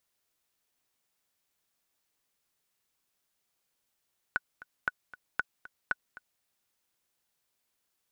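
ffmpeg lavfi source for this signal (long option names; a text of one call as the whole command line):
ffmpeg -f lavfi -i "aevalsrc='pow(10,(-14.5-18.5*gte(mod(t,2*60/232),60/232))/20)*sin(2*PI*1480*mod(t,60/232))*exp(-6.91*mod(t,60/232)/0.03)':duration=2.06:sample_rate=44100" out.wav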